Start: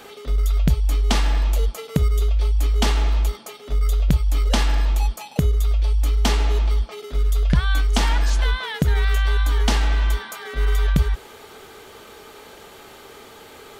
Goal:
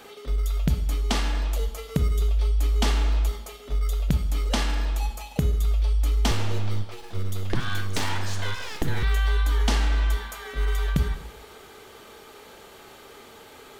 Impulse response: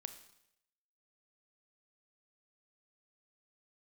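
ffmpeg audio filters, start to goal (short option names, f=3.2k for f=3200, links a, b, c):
-filter_complex "[1:a]atrim=start_sample=2205[a];[0:a][a]afir=irnorm=-1:irlink=0,asettb=1/sr,asplit=3[b][c][d];[b]atrim=end=6.314[e];[c]atrim=start=6.31:end=9.03,asetpts=PTS-STARTPTS,afade=t=in:d=0.004:c=qsin,afade=t=out:st=2.716:d=0.004:c=qsin,aeval=exprs='abs(val(0))':c=same[f];[d]atrim=start=9.026[g];[e][f]acrossfade=d=0.004:c1=hsin:c2=qsin[h];[h][g]acrossfade=d=0.004:c1=qsin:c2=hsin"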